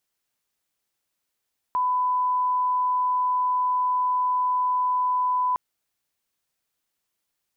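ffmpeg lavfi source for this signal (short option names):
-f lavfi -i "sine=f=1000:d=3.81:r=44100,volume=-1.94dB"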